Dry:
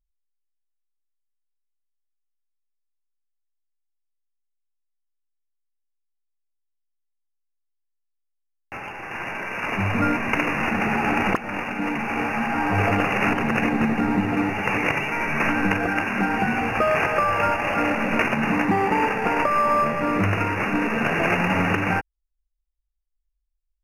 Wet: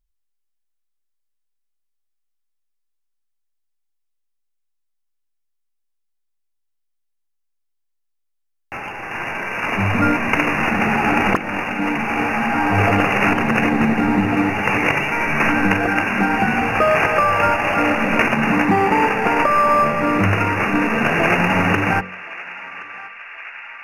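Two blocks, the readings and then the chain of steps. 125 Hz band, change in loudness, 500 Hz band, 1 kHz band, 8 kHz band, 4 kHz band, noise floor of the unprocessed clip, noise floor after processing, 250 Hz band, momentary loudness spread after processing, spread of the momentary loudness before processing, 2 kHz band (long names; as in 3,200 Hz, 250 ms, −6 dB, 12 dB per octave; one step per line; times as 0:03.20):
+4.5 dB, +5.0 dB, +4.5 dB, +5.0 dB, +5.0 dB, +5.5 dB, −76 dBFS, −71 dBFS, +4.5 dB, 15 LU, 6 LU, +5.5 dB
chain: hum removal 46.08 Hz, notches 13
on a send: feedback echo with a band-pass in the loop 1,073 ms, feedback 83%, band-pass 2,100 Hz, level −15.5 dB
on the sum: level +5 dB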